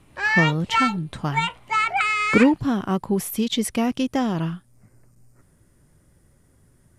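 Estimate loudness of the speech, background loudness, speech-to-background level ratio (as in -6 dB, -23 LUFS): -23.5 LUFS, -22.0 LUFS, -1.5 dB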